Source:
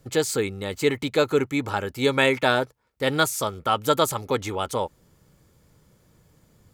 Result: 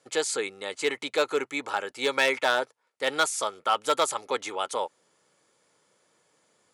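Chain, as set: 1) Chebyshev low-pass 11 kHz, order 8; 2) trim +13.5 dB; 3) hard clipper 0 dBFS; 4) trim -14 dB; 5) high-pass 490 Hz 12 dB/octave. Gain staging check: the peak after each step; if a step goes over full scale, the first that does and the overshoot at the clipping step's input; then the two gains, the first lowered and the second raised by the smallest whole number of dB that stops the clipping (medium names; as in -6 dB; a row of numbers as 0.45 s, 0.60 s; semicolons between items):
-5.0 dBFS, +8.5 dBFS, 0.0 dBFS, -14.0 dBFS, -10.0 dBFS; step 2, 8.5 dB; step 2 +4.5 dB, step 4 -5 dB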